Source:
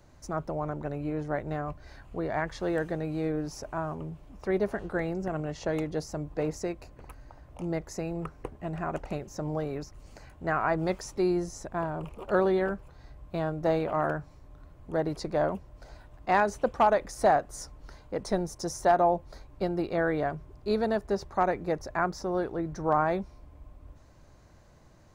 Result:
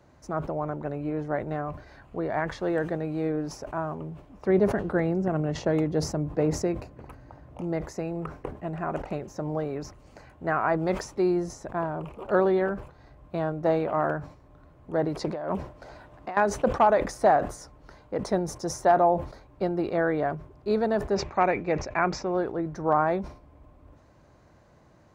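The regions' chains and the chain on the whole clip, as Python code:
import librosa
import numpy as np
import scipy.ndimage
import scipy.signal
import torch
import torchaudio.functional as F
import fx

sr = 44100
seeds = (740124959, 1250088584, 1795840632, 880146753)

y = fx.chain(x, sr, fx.highpass(hz=100.0, slope=6),
    fx.low_shelf(hz=280.0, db=10.0), at=(4.46, 7.61))
y = fx.chain(y, sr, fx.low_shelf(hz=120.0, db=-6.0),
    fx.over_compress(threshold_db=-33.0, ratio=-1.0),
    fx.doppler_dist(depth_ms=0.2), at=(15.19, 16.37))
y = fx.chain(y, sr, fx.steep_lowpass(hz=7700.0, slope=72),
    fx.peak_eq(hz=2400.0, db=14.0, octaves=0.44), at=(21.15, 22.37))
y = fx.highpass(y, sr, hz=130.0, slope=6)
y = fx.high_shelf(y, sr, hz=3400.0, db=-10.0)
y = fx.sustainer(y, sr, db_per_s=120.0)
y = y * librosa.db_to_amplitude(3.0)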